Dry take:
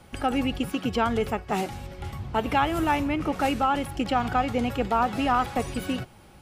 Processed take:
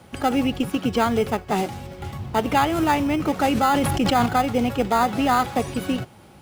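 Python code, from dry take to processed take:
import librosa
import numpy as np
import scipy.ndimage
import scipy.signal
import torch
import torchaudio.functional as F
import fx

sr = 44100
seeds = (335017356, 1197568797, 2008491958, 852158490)

p1 = scipy.signal.sosfilt(scipy.signal.butter(2, 85.0, 'highpass', fs=sr, output='sos'), x)
p2 = fx.sample_hold(p1, sr, seeds[0], rate_hz=2800.0, jitter_pct=0)
p3 = p1 + (p2 * 10.0 ** (-8.0 / 20.0))
p4 = fx.sustainer(p3, sr, db_per_s=23.0, at=(3.51, 4.26))
y = p4 * 10.0 ** (2.0 / 20.0)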